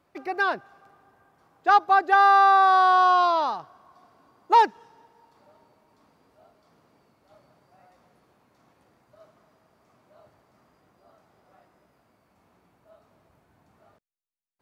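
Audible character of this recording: noise floor -68 dBFS; spectral tilt +1.5 dB/oct

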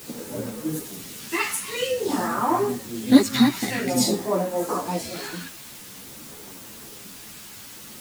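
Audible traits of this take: phasing stages 2, 0.5 Hz, lowest notch 550–3300 Hz; a quantiser's noise floor 8-bit, dither triangular; a shimmering, thickened sound

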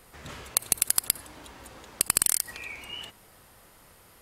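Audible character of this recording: noise floor -56 dBFS; spectral tilt 0.0 dB/oct

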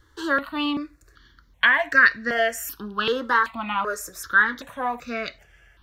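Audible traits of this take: notches that jump at a steady rate 2.6 Hz 680–3200 Hz

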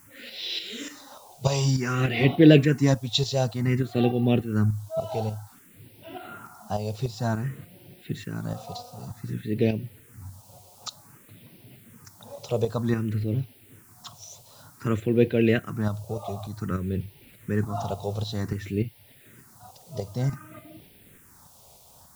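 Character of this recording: tremolo saw up 3.4 Hz, depth 55%; a quantiser's noise floor 10-bit, dither triangular; phasing stages 4, 0.54 Hz, lowest notch 280–1200 Hz

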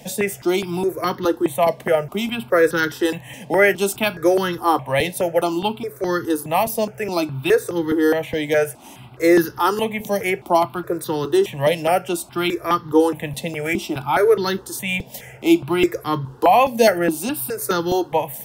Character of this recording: notches that jump at a steady rate 4.8 Hz 360–2400 Hz

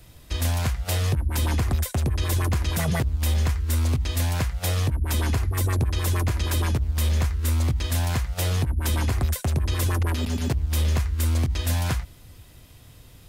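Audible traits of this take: noise floor -48 dBFS; spectral tilt -4.5 dB/oct

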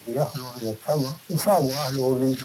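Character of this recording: a buzz of ramps at a fixed pitch in blocks of 8 samples; phasing stages 2, 1.5 Hz, lowest notch 360–4100 Hz; a quantiser's noise floor 8-bit, dither triangular; Speex

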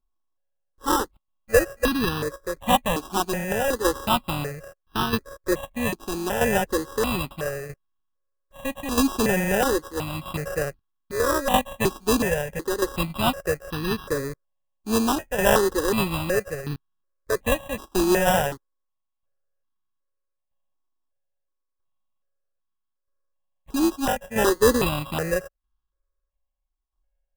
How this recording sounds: a buzz of ramps at a fixed pitch in blocks of 16 samples; tremolo saw down 0.78 Hz, depth 60%; aliases and images of a low sample rate 2200 Hz, jitter 0%; notches that jump at a steady rate 2.7 Hz 530–2100 Hz

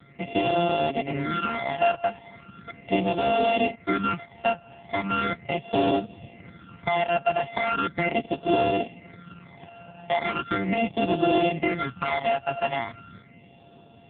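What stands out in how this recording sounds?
a buzz of ramps at a fixed pitch in blocks of 64 samples; phasing stages 12, 0.38 Hz, lowest notch 370–1800 Hz; AMR-NB

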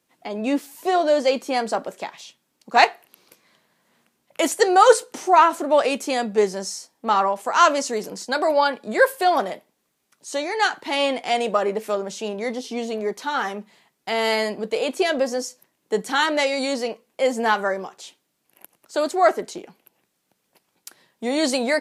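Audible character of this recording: noise floor -73 dBFS; spectral tilt -2.5 dB/oct

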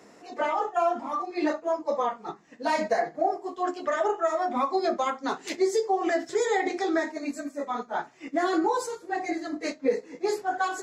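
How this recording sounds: noise floor -53 dBFS; spectral tilt -1.5 dB/oct

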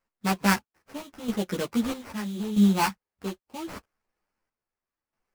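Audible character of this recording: chopped level 0.78 Hz, depth 65%, duty 50%; aliases and images of a low sample rate 3600 Hz, jitter 20%; a shimmering, thickened sound

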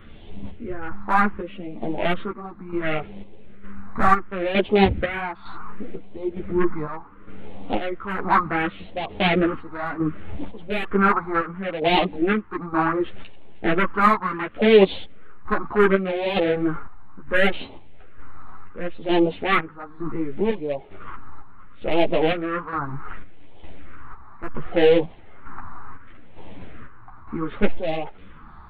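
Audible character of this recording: phasing stages 4, 0.69 Hz, lowest notch 510–1300 Hz; chopped level 1.1 Hz, depth 60%, duty 55%; a shimmering, thickened sound

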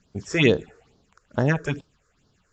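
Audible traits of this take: a quantiser's noise floor 12-bit, dither none; phasing stages 6, 2.3 Hz, lowest notch 200–2400 Hz; AAC

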